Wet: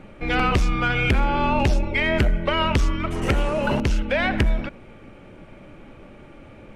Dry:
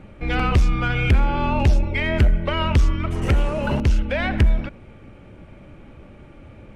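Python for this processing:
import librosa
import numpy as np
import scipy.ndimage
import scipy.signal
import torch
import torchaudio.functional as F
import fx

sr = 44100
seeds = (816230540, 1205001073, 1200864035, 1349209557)

y = fx.peak_eq(x, sr, hz=70.0, db=-9.0, octaves=2.2)
y = y * 10.0 ** (2.5 / 20.0)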